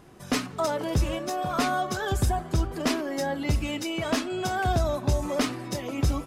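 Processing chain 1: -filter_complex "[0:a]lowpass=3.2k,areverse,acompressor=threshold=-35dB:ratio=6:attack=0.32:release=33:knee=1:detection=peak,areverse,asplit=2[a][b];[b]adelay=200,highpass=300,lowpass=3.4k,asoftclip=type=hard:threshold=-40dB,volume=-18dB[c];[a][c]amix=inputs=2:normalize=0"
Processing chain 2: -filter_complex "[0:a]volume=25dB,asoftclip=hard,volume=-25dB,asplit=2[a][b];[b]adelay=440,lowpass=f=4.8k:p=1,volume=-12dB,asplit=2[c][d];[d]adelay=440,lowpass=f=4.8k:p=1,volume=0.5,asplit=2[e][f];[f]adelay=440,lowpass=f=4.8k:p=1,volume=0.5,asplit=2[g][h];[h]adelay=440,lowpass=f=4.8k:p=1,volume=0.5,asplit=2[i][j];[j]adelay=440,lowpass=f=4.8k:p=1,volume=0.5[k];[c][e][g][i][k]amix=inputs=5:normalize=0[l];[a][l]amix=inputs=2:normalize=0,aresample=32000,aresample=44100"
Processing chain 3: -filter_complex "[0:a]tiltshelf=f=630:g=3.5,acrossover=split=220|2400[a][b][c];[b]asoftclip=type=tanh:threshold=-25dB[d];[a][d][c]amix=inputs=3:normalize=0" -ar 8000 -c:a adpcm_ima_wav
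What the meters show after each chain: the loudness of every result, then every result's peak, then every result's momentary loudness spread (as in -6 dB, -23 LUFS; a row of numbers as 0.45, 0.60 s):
-39.0, -30.0, -27.5 LUFS; -30.0, -21.5, -11.5 dBFS; 1, 3, 6 LU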